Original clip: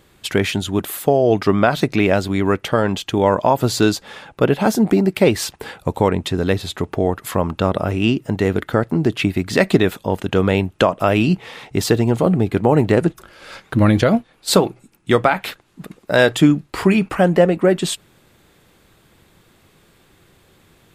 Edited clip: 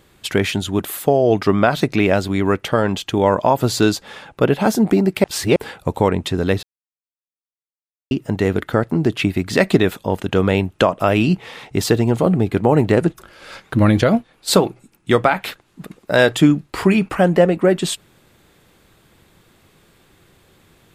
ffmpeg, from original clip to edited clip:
ffmpeg -i in.wav -filter_complex "[0:a]asplit=5[link_01][link_02][link_03][link_04][link_05];[link_01]atrim=end=5.242[link_06];[link_02]atrim=start=5.238:end=5.562,asetpts=PTS-STARTPTS,areverse[link_07];[link_03]atrim=start=5.558:end=6.63,asetpts=PTS-STARTPTS,afade=type=out:start_time=1.068:duration=0.004:curve=hsin[link_08];[link_04]atrim=start=6.63:end=8.11,asetpts=PTS-STARTPTS,volume=0[link_09];[link_05]atrim=start=8.11,asetpts=PTS-STARTPTS,afade=type=in:duration=0.004:curve=hsin[link_10];[link_06][link_07]acrossfade=duration=0.004:curve1=hsin:curve2=hsin[link_11];[link_08][link_09][link_10]concat=n=3:v=0:a=1[link_12];[link_11][link_12]acrossfade=duration=0.004:curve1=hsin:curve2=hsin" out.wav

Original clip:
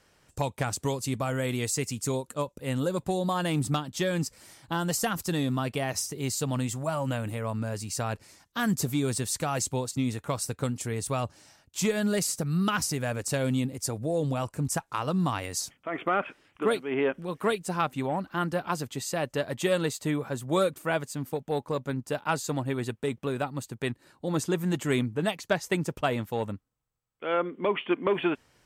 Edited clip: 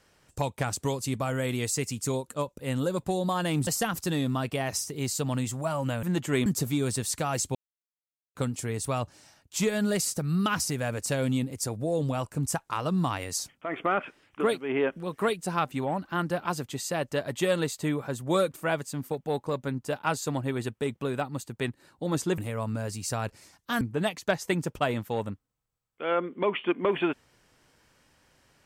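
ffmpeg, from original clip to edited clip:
ffmpeg -i in.wav -filter_complex "[0:a]asplit=8[link_01][link_02][link_03][link_04][link_05][link_06][link_07][link_08];[link_01]atrim=end=3.672[link_09];[link_02]atrim=start=4.888:end=7.252[link_10];[link_03]atrim=start=24.598:end=25.032[link_11];[link_04]atrim=start=8.678:end=9.77,asetpts=PTS-STARTPTS,afade=type=out:start_time=1.088:duration=0.004:curve=hsin[link_12];[link_05]atrim=start=9.77:end=10.57,asetpts=PTS-STARTPTS,volume=0[link_13];[link_06]atrim=start=10.57:end=24.602,asetpts=PTS-STARTPTS,afade=type=in:duration=0.004:curve=hsin[link_14];[link_07]atrim=start=7.248:end=8.682[link_15];[link_08]atrim=start=25.028[link_16];[link_09][link_10]acrossfade=duration=0.004:curve1=hsin:curve2=hsin[link_17];[link_17][link_11]acrossfade=duration=0.004:curve1=hsin:curve2=hsin[link_18];[link_12][link_13][link_14]concat=n=3:v=0:a=1[link_19];[link_18][link_19]acrossfade=duration=0.004:curve1=hsin:curve2=hsin[link_20];[link_20][link_15]acrossfade=duration=0.004:curve1=hsin:curve2=hsin[link_21];[link_21][link_16]acrossfade=duration=0.004:curve1=hsin:curve2=hsin" out.wav

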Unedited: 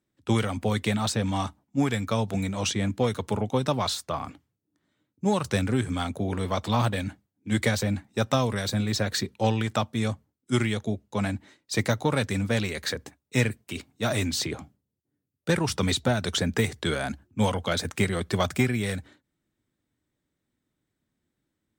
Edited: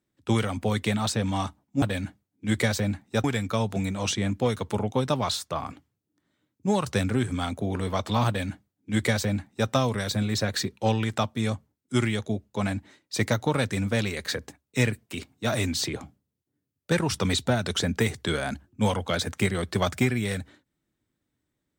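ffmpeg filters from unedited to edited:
ffmpeg -i in.wav -filter_complex "[0:a]asplit=3[link_01][link_02][link_03];[link_01]atrim=end=1.822[link_04];[link_02]atrim=start=6.848:end=8.272[link_05];[link_03]atrim=start=1.818[link_06];[link_04][link_05]acrossfade=duration=0.004:curve1=hsin:curve2=hsin[link_07];[link_07][link_06]acrossfade=duration=0.004:curve1=hsin:curve2=hsin" out.wav

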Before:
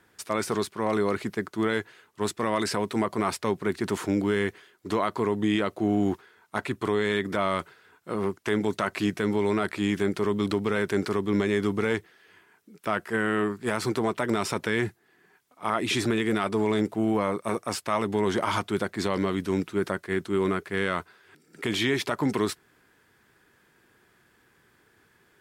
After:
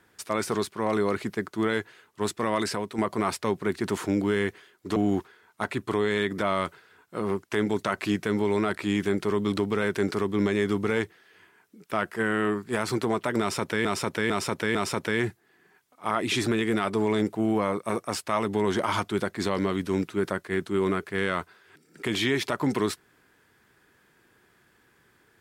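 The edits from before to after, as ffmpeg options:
ffmpeg -i in.wav -filter_complex "[0:a]asplit=6[link_01][link_02][link_03][link_04][link_05][link_06];[link_01]atrim=end=2.98,asetpts=PTS-STARTPTS,afade=type=out:start_time=2.61:duration=0.37:silence=0.398107[link_07];[link_02]atrim=start=2.98:end=4.962,asetpts=PTS-STARTPTS,afade=type=in:duration=0.004:curve=hsin:silence=0.398107[link_08];[link_03]atrim=start=5.898:end=14.792[link_09];[link_04]atrim=start=14.338:end=14.792[link_10];[link_05]atrim=start=14.338:end=14.792[link_11];[link_06]atrim=start=14.338[link_12];[link_07][link_08]concat=n=2:v=0:a=1[link_13];[link_13][link_09]acrossfade=duration=0.004:curve1=hsin:curve2=hsin[link_14];[link_14][link_10]acrossfade=duration=0.004:curve1=hsin:curve2=hsin[link_15];[link_15][link_11]acrossfade=duration=0.004:curve1=hsin:curve2=hsin[link_16];[link_16][link_12]acrossfade=duration=0.004:curve1=hsin:curve2=hsin" out.wav

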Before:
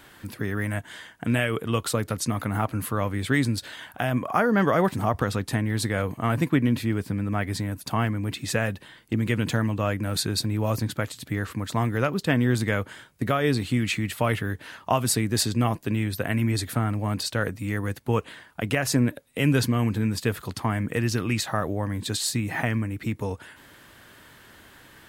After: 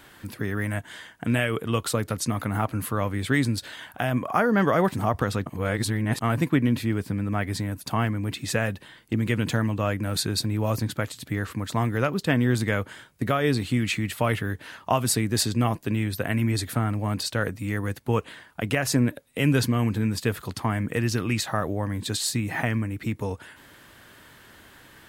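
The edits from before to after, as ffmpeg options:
ffmpeg -i in.wav -filter_complex "[0:a]asplit=3[link_01][link_02][link_03];[link_01]atrim=end=5.462[link_04];[link_02]atrim=start=5.458:end=6.212,asetpts=PTS-STARTPTS,areverse[link_05];[link_03]atrim=start=6.208[link_06];[link_04][link_05]acrossfade=duration=0.004:curve1=hsin:curve2=hsin[link_07];[link_07][link_06]acrossfade=duration=0.004:curve1=hsin:curve2=hsin" out.wav

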